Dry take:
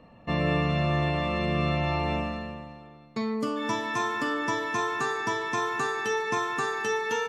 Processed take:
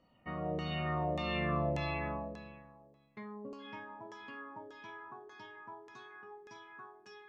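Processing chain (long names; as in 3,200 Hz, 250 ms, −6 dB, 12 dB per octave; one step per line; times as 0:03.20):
source passing by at 0:01.46, 20 m/s, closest 12 metres
auto-filter low-pass saw down 1.7 Hz 460–6,500 Hz
level −8 dB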